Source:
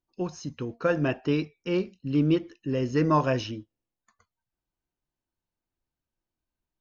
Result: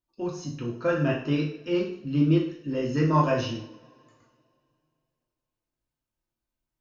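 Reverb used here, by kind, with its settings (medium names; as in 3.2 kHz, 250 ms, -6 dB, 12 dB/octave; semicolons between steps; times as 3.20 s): two-slope reverb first 0.54 s, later 2.6 s, from -26 dB, DRR -3 dB; trim -4.5 dB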